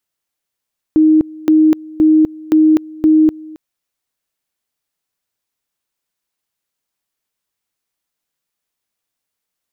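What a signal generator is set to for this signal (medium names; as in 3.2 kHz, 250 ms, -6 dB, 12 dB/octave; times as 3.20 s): two-level tone 312 Hz -6 dBFS, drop 23 dB, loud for 0.25 s, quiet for 0.27 s, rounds 5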